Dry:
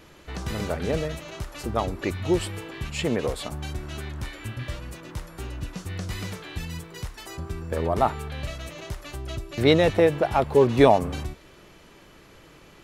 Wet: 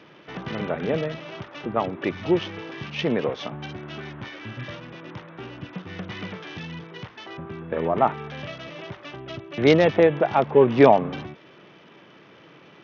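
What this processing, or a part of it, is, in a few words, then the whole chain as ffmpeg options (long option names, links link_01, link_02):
Bluetooth headset: -af "highpass=frequency=130:width=0.5412,highpass=frequency=130:width=1.3066,aresample=8000,aresample=44100,volume=2dB" -ar 48000 -c:a sbc -b:a 64k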